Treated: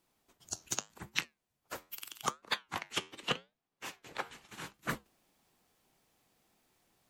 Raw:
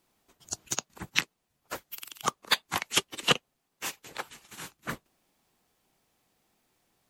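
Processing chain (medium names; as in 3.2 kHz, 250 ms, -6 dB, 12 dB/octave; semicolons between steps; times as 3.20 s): 2.32–4.74 s: treble shelf 5.8 kHz -11.5 dB; gain riding within 4 dB 0.5 s; flange 0.82 Hz, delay 5.9 ms, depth 6 ms, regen -80%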